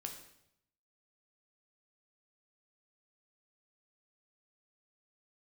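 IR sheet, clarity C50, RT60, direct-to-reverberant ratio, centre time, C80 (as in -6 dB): 7.0 dB, 0.75 s, 3.0 dB, 22 ms, 10.0 dB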